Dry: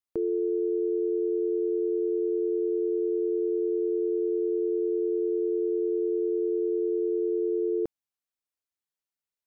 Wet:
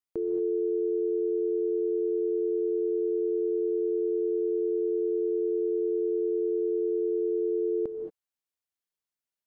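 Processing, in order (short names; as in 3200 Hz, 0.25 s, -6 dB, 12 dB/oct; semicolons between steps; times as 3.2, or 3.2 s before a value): reverb, pre-delay 3 ms, DRR 5 dB; gain -2.5 dB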